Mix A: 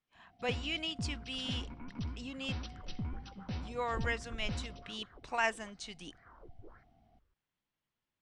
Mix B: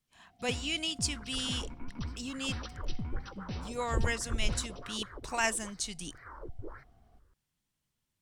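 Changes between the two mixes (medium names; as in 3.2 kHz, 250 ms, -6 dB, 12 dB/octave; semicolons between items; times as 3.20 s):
speech: add tone controls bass +10 dB, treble +9 dB; second sound +10.5 dB; master: remove distance through air 75 m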